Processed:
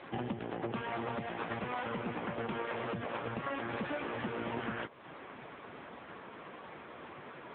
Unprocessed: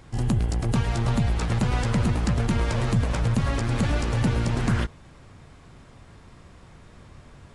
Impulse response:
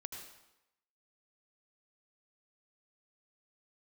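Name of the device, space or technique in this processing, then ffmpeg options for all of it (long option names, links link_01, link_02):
voicemail: -af "highpass=350,lowpass=3200,acompressor=threshold=-43dB:ratio=6,volume=10dB" -ar 8000 -c:a libopencore_amrnb -b:a 6700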